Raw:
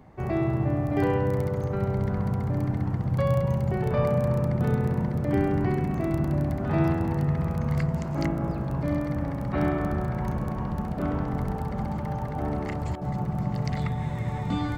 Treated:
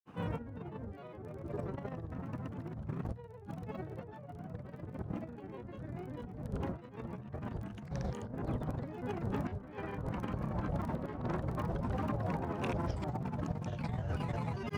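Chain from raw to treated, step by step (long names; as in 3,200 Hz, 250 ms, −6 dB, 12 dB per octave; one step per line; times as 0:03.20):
high-pass filter 62 Hz
compressor whose output falls as the input rises −31 dBFS, ratio −0.5
granular cloud 100 ms, pitch spread up and down by 7 semitones
level −6 dB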